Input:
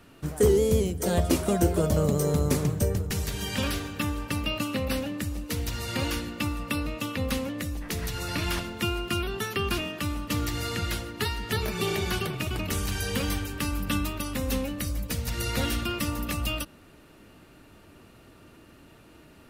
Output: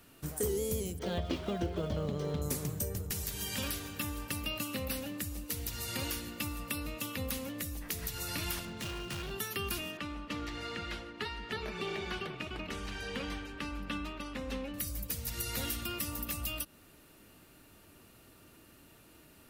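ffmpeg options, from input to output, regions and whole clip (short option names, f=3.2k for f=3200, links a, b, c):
-filter_complex "[0:a]asettb=1/sr,asplit=3[a][b][c];[a]atrim=end=0.994[d];[b]atrim=start=0.99:end=2.42,asetpts=PTS-STARTPTS,afade=t=in:d=0.004:c=qsin,afade=t=out:st=1.426:d=0.004:c=qsin,lowpass=f=4.1k:w=0.5412,lowpass=f=4.1k:w=1.3066,equalizer=f=3.2k:t=o:w=0.21:g=6,aeval=exprs='sgn(val(0))*max(abs(val(0))-0.00398,0)':c=same[e];[c]atrim=start=2.416[f];[d][e]acrossfade=d=0.004:c1=hsin:c2=qsin[g];[g][f]acrossfade=d=0.004:c1=qsin:c2=hsin,asettb=1/sr,asplit=3[h][i][j];[h]atrim=end=8.654[k];[i]atrim=start=8.65:end=9.31,asetpts=PTS-STARTPTS,afade=t=in:d=0.004:c=qsin,afade=t=out:st=0.656:d=0.004:c=qsin,lowpass=6.1k,equalizer=f=150:w=2.1:g=11.5,volume=30.5dB,asoftclip=hard,volume=-30.5dB[l];[j]atrim=start=9.306[m];[k][l]acrossfade=d=0.004:c1=hsin:c2=qsin[n];[n][m]acrossfade=d=0.004:c1=qsin:c2=hsin,asettb=1/sr,asplit=3[o][p][q];[o]atrim=end=9.974[r];[p]atrim=start=9.97:end=14.74,asetpts=PTS-STARTPTS,afade=t=in:d=0.004:c=qsin,afade=t=out:st=4.766:d=0.004:c=qsin,lowpass=2.9k,equalizer=f=98:t=o:w=1.2:g=-11[s];[q]atrim=start=14.736[t];[r][s]acrossfade=d=0.004:c1=hsin:c2=qsin[u];[u][t]acrossfade=d=0.004:c1=qsin:c2=hsin,aemphasis=mode=production:type=75fm,acompressor=threshold=-26dB:ratio=2,highshelf=f=5.2k:g=-5.5,volume=-6.5dB"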